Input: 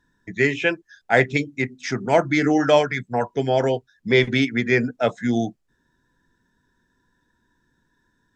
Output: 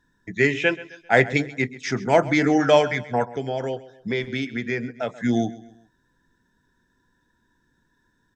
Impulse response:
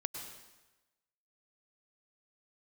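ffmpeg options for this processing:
-filter_complex "[0:a]asplit=3[link_01][link_02][link_03];[link_01]afade=type=out:start_time=3.23:duration=0.02[link_04];[link_02]acompressor=threshold=-27dB:ratio=2.5,afade=type=in:start_time=3.23:duration=0.02,afade=type=out:start_time=5.2:duration=0.02[link_05];[link_03]afade=type=in:start_time=5.2:duration=0.02[link_06];[link_04][link_05][link_06]amix=inputs=3:normalize=0,asplit=2[link_07][link_08];[link_08]aecho=0:1:132|264|396:0.126|0.0516|0.0212[link_09];[link_07][link_09]amix=inputs=2:normalize=0"

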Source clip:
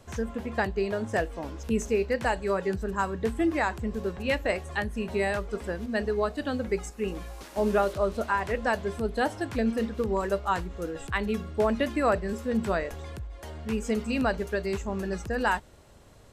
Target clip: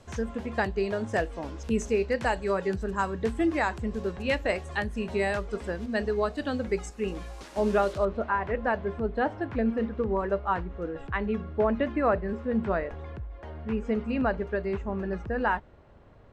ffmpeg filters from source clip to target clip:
ffmpeg -i in.wav -af "asetnsamples=nb_out_samples=441:pad=0,asendcmd='8.05 lowpass f 2000',lowpass=8300" out.wav

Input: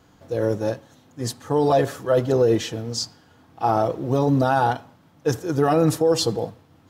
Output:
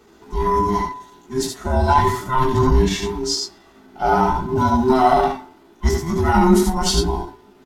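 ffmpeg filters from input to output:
ffmpeg -i in.wav -af "afftfilt=real='real(if(between(b,1,1008),(2*floor((b-1)/24)+1)*24-b,b),0)':imag='imag(if(between(b,1,1008),(2*floor((b-1)/24)+1)*24-b,b),0)*if(between(b,1,1008),-1,1)':win_size=2048:overlap=0.75,bandreject=frequency=125.2:width_type=h:width=4,bandreject=frequency=250.4:width_type=h:width=4,bandreject=frequency=375.6:width_type=h:width=4,bandreject=frequency=500.8:width_type=h:width=4,bandreject=frequency=626:width_type=h:width=4,bandreject=frequency=751.2:width_type=h:width=4,bandreject=frequency=876.4:width_type=h:width=4,bandreject=frequency=1001.6:width_type=h:width=4,bandreject=frequency=1126.8:width_type=h:width=4,bandreject=frequency=1252:width_type=h:width=4,bandreject=frequency=1377.2:width_type=h:width=4,bandreject=frequency=1502.4:width_type=h:width=4,bandreject=frequency=1627.6:width_type=h:width=4,bandreject=frequency=1752.8:width_type=h:width=4,bandreject=frequency=1878:width_type=h:width=4,bandreject=frequency=2003.2:width_type=h:width=4,acontrast=57,flanger=delay=17:depth=2.9:speed=0.94,aecho=1:1:15|62|73:0.398|0.376|0.562,atempo=0.9" out.wav

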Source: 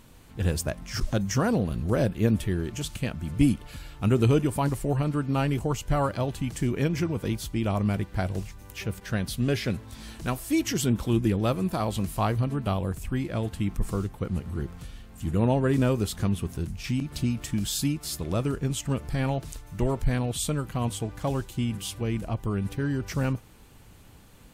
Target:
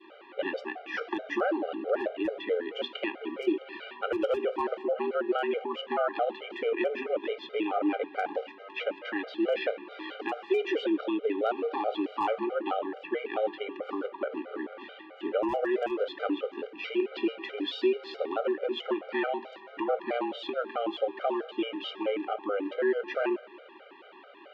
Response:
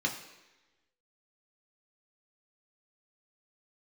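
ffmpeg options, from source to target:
-filter_complex "[0:a]adynamicequalizer=threshold=0.00631:dfrequency=1100:dqfactor=0.88:tfrequency=1100:tqfactor=0.88:attack=5:release=100:ratio=0.375:range=2:mode=cutabove:tftype=bell,highpass=frequency=280:width_type=q:width=0.5412,highpass=frequency=280:width_type=q:width=1.307,lowpass=frequency=3200:width_type=q:width=0.5176,lowpass=frequency=3200:width_type=q:width=0.7071,lowpass=frequency=3200:width_type=q:width=1.932,afreqshift=94,asplit=2[link_01][link_02];[link_02]acompressor=threshold=-41dB:ratio=6,volume=-0.5dB[link_03];[link_01][link_03]amix=inputs=2:normalize=0,asoftclip=type=hard:threshold=-17dB,asplit=2[link_04][link_05];[1:a]atrim=start_sample=2205,highshelf=frequency=7400:gain=-7.5[link_06];[link_05][link_06]afir=irnorm=-1:irlink=0,volume=-15dB[link_07];[link_04][link_07]amix=inputs=2:normalize=0,alimiter=limit=-22dB:level=0:latency=1:release=102,afftfilt=real='re*gt(sin(2*PI*4.6*pts/sr)*(1-2*mod(floor(b*sr/1024/400),2)),0)':imag='im*gt(sin(2*PI*4.6*pts/sr)*(1-2*mod(floor(b*sr/1024/400),2)),0)':win_size=1024:overlap=0.75,volume=6dB"

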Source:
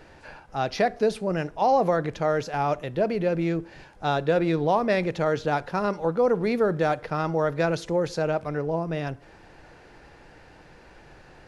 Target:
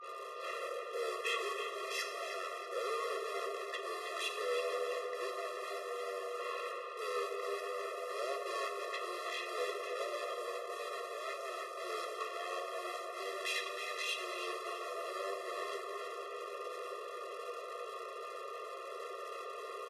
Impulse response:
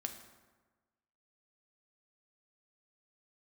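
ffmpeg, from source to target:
-filter_complex "[0:a]agate=range=-33dB:threshold=-45dB:ratio=3:detection=peak,adynamicequalizer=threshold=0.0112:dfrequency=740:dqfactor=4.6:tfrequency=740:tqfactor=4.6:attack=5:release=100:ratio=0.375:range=1.5:mode=cutabove:tftype=bell,areverse,acompressor=threshold=-30dB:ratio=12,areverse,aeval=exprs='(tanh(224*val(0)+0.2)-tanh(0.2))/224':channel_layout=same,acrossover=split=450|840[link_01][link_02][link_03];[link_02]aeval=exprs='(mod(1330*val(0)+1,2)-1)/1330':channel_layout=same[link_04];[link_01][link_04][link_03]amix=inputs=3:normalize=0,aeval=exprs='val(0)+0.000562*sin(2*PI*2100*n/s)':channel_layout=same,asetrate=25442,aresample=44100,asplit=2[link_05][link_06];[link_06]adelay=320,lowpass=frequency=4300:poles=1,volume=-6.5dB,asplit=2[link_07][link_08];[link_08]adelay=320,lowpass=frequency=4300:poles=1,volume=0.55,asplit=2[link_09][link_10];[link_10]adelay=320,lowpass=frequency=4300:poles=1,volume=0.55,asplit=2[link_11][link_12];[link_12]adelay=320,lowpass=frequency=4300:poles=1,volume=0.55,asplit=2[link_13][link_14];[link_14]adelay=320,lowpass=frequency=4300:poles=1,volume=0.55,asplit=2[link_15][link_16];[link_16]adelay=320,lowpass=frequency=4300:poles=1,volume=0.55,asplit=2[link_17][link_18];[link_18]adelay=320,lowpass=frequency=4300:poles=1,volume=0.55[link_19];[link_05][link_07][link_09][link_11][link_13][link_15][link_17][link_19]amix=inputs=8:normalize=0[link_20];[1:a]atrim=start_sample=2205,asetrate=31311,aresample=44100[link_21];[link_20][link_21]afir=irnorm=-1:irlink=0,afftfilt=real='re*eq(mod(floor(b*sr/1024/350),2),1)':imag='im*eq(mod(floor(b*sr/1024/350),2),1)':win_size=1024:overlap=0.75,volume=17dB"

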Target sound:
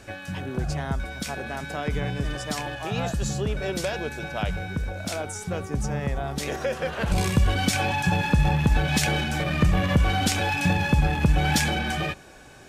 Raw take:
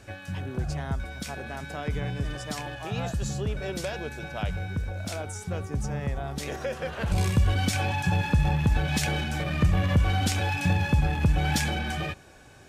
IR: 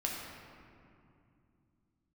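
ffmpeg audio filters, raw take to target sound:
-af "equalizer=frequency=92:width=1.9:gain=-7,volume=4.5dB"

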